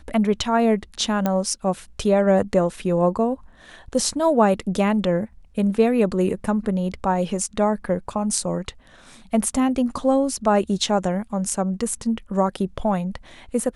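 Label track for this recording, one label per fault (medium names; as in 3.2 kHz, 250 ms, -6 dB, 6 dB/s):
1.260000	1.260000	pop -9 dBFS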